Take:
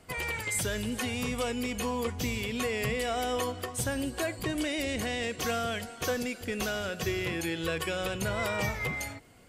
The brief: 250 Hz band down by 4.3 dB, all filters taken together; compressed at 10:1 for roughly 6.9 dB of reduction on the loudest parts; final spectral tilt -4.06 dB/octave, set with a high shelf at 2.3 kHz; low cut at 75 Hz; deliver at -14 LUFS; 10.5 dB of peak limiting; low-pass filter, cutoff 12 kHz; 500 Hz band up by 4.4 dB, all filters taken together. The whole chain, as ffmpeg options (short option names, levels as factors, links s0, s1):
-af "highpass=75,lowpass=12000,equalizer=f=250:t=o:g=-7.5,equalizer=f=500:t=o:g=7,highshelf=f=2300:g=-4,acompressor=threshold=0.0316:ratio=10,volume=18.8,alimiter=limit=0.501:level=0:latency=1"